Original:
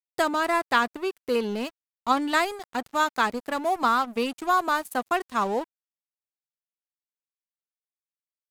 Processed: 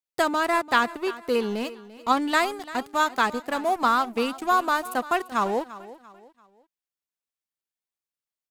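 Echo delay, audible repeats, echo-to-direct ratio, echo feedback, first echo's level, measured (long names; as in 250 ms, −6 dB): 342 ms, 3, −16.5 dB, 37%, −17.0 dB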